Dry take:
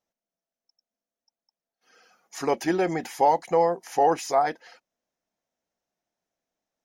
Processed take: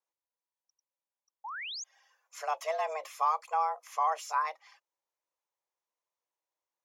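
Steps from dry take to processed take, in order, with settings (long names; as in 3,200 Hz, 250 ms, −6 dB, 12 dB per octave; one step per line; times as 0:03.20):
frequency shifter +310 Hz
sound drawn into the spectrogram rise, 0:01.44–0:01.84, 800–7,000 Hz −31 dBFS
pitch vibrato 1.2 Hz 14 cents
level −8.5 dB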